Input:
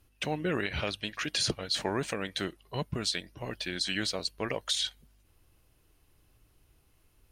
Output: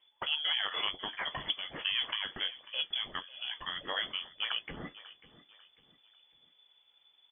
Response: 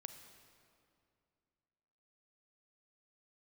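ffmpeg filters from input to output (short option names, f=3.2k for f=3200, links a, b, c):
-af "aecho=1:1:544|1088|1632:0.126|0.0453|0.0163,flanger=delay=8.9:depth=4.2:regen=-52:speed=1.3:shape=sinusoidal,lowpass=f=3k:t=q:w=0.5098,lowpass=f=3k:t=q:w=0.6013,lowpass=f=3k:t=q:w=0.9,lowpass=f=3k:t=q:w=2.563,afreqshift=-3500,volume=2.5dB"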